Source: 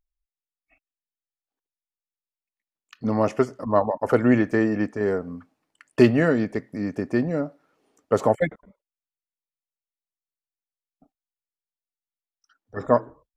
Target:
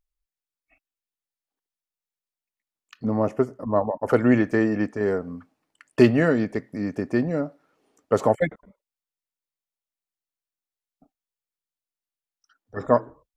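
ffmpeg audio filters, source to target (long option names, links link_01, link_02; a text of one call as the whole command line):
ffmpeg -i in.wav -filter_complex "[0:a]asettb=1/sr,asplit=3[link_01][link_02][link_03];[link_01]atrim=end=3.054[link_04];[link_02]atrim=start=3.05:end=4.08,asetpts=PTS-STARTPTS,afade=type=in:duration=0.004:curve=qsin,afade=type=out:start_time=1.026:duration=0.004:curve=qsin,equalizer=frequency=4100:width_type=o:width=2.7:gain=-13[link_05];[link_03]atrim=start=4.076[link_06];[link_04][link_05]acrossfade=duration=0.004:curve1=hsin:curve2=qsin[link_07];[link_07][link_06]acrossfade=duration=0.004:curve1=qsin:curve2=hsin" out.wav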